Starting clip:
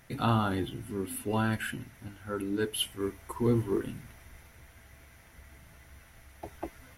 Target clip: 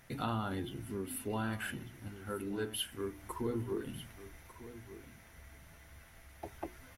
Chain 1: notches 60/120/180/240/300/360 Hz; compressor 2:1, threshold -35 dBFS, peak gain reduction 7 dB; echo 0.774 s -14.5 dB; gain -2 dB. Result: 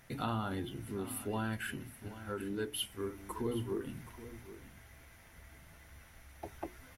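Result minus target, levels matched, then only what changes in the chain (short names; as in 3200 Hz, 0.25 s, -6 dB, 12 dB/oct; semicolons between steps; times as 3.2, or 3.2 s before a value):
echo 0.423 s early
change: echo 1.197 s -14.5 dB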